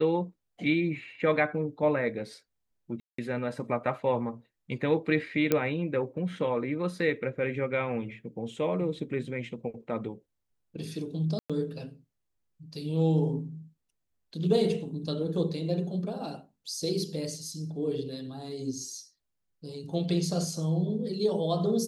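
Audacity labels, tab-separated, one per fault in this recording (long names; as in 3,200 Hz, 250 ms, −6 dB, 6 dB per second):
3.000000	3.180000	drop-out 184 ms
5.520000	5.520000	click −10 dBFS
11.390000	11.500000	drop-out 106 ms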